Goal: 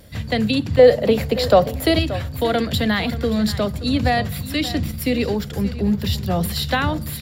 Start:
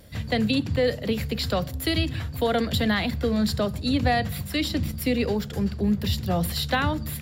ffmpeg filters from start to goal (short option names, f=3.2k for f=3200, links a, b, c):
-filter_complex "[0:a]asettb=1/sr,asplit=3[a][b][c];[a]atrim=end=0.794[d];[b]atrim=start=0.79:end=1.99,asetpts=PTS-STARTPTS,afade=t=in:d=0.004:c=qsin,afade=t=out:st=1.196:d=0.004:c=qsin,equalizer=f=630:w=0.92:g=12[e];[c]atrim=start=1.986[f];[d][e]acrossfade=d=0.004:c1=hsin:c2=qsin[g];[g][f]acrossfade=d=0.004:c1=qsin:c2=hsin,aecho=1:1:578:0.178,volume=3.5dB"